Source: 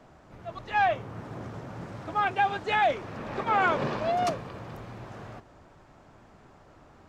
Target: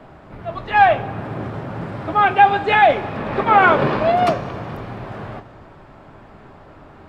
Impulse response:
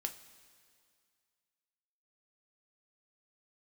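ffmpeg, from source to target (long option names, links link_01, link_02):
-filter_complex "[0:a]asplit=2[link_01][link_02];[link_02]lowpass=5700[link_03];[1:a]atrim=start_sample=2205,lowpass=7500[link_04];[link_03][link_04]afir=irnorm=-1:irlink=0,volume=4dB[link_05];[link_01][link_05]amix=inputs=2:normalize=0,volume=4dB"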